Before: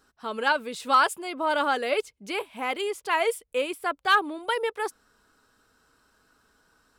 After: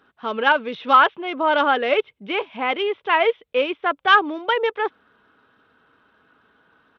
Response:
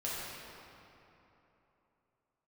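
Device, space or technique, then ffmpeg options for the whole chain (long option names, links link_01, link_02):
Bluetooth headset: -af "highpass=110,aresample=8000,aresample=44100,volume=6.5dB" -ar 32000 -c:a sbc -b:a 64k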